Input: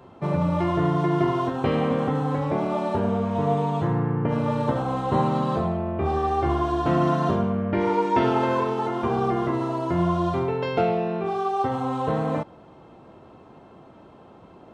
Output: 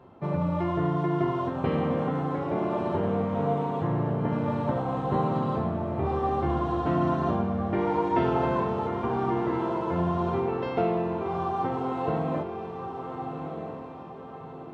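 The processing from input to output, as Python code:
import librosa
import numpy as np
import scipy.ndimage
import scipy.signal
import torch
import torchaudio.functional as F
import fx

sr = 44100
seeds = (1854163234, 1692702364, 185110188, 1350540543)

p1 = fx.high_shelf(x, sr, hz=4300.0, db=-11.5)
p2 = p1 + fx.echo_diffused(p1, sr, ms=1346, feedback_pct=44, wet_db=-7, dry=0)
y = F.gain(torch.from_numpy(p2), -4.0).numpy()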